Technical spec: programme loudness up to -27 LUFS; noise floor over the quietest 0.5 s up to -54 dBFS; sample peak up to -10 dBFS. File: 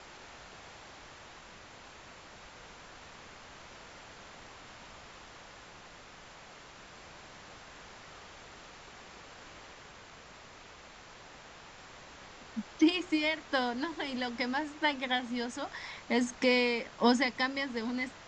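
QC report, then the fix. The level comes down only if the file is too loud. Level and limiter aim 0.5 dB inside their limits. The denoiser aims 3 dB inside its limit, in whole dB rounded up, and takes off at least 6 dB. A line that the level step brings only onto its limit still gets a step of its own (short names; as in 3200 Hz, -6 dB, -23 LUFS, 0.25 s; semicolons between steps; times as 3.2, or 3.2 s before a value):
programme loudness -31.5 LUFS: OK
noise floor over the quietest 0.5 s -52 dBFS: fail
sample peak -12.5 dBFS: OK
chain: denoiser 6 dB, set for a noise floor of -52 dBFS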